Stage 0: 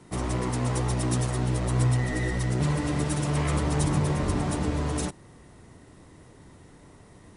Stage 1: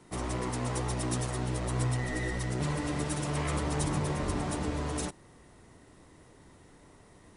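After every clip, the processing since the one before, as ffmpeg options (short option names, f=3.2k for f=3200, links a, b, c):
-af "equalizer=f=120:t=o:w=2.3:g=-4.5,volume=-3dB"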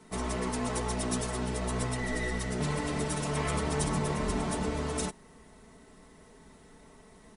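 -af "aecho=1:1:4.6:0.71"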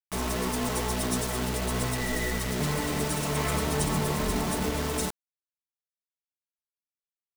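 -af "acrusher=bits=5:mix=0:aa=0.000001,volume=2.5dB"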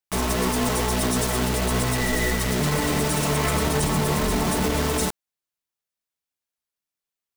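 -af "alimiter=limit=-20dB:level=0:latency=1:release=16,volume=6.5dB"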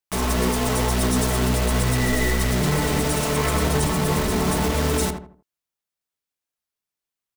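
-filter_complex "[0:a]asplit=2[a][b];[b]adelay=80,lowpass=f=1.3k:p=1,volume=-5dB,asplit=2[c][d];[d]adelay=80,lowpass=f=1.3k:p=1,volume=0.35,asplit=2[e][f];[f]adelay=80,lowpass=f=1.3k:p=1,volume=0.35,asplit=2[g][h];[h]adelay=80,lowpass=f=1.3k:p=1,volume=0.35[i];[a][c][e][g][i]amix=inputs=5:normalize=0"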